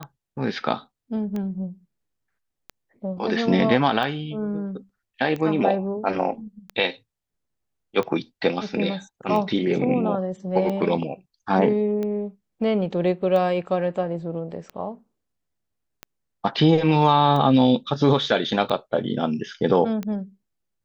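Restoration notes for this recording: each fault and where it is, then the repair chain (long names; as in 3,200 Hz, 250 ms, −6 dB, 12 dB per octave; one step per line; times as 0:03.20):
scratch tick 45 rpm −18 dBFS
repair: click removal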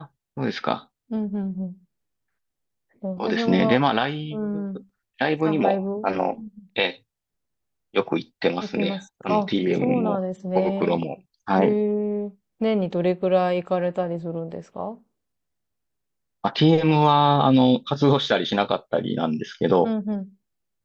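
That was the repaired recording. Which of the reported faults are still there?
none of them is left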